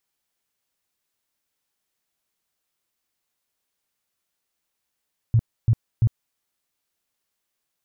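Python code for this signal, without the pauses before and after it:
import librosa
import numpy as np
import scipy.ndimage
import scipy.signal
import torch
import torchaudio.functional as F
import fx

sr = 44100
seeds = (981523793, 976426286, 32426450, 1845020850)

y = fx.tone_burst(sr, hz=114.0, cycles=6, every_s=0.34, bursts=3, level_db=-13.0)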